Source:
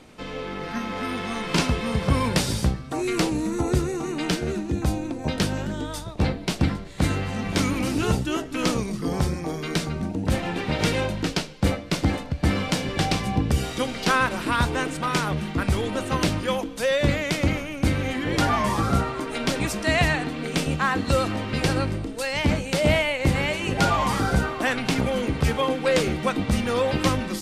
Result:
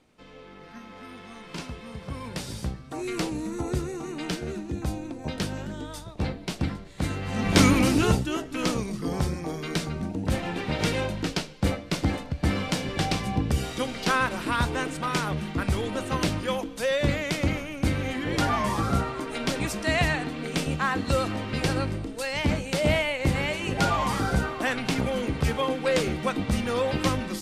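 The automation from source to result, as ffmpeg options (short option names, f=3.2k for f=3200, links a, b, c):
-af "volume=6dB,afade=t=in:st=2.19:d=0.87:silence=0.375837,afade=t=in:st=7.21:d=0.44:silence=0.251189,afade=t=out:st=7.65:d=0.64:silence=0.354813"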